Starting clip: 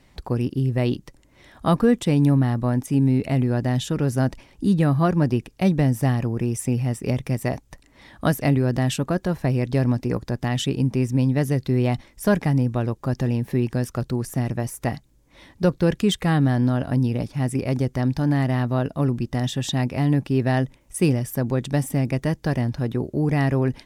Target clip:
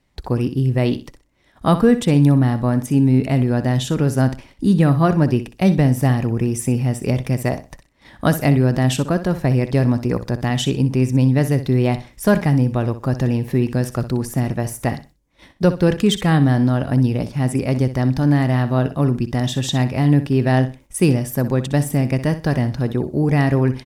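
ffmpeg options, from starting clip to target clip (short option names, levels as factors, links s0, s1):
-filter_complex "[0:a]agate=range=0.2:threshold=0.00447:ratio=16:detection=peak,asplit=2[s0][s1];[s1]aecho=0:1:62|124|186:0.237|0.0545|0.0125[s2];[s0][s2]amix=inputs=2:normalize=0,volume=1.58"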